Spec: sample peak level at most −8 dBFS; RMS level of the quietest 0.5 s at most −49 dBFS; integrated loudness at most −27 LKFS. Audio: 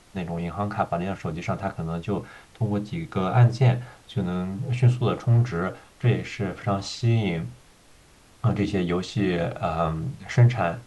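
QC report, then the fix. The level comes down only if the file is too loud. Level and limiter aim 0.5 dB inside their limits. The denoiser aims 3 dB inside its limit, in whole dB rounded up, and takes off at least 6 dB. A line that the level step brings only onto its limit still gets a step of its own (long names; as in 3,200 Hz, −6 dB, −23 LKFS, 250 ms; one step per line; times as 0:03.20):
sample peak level −6.0 dBFS: out of spec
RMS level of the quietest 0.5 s −54 dBFS: in spec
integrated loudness −25.5 LKFS: out of spec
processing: level −2 dB
brickwall limiter −8.5 dBFS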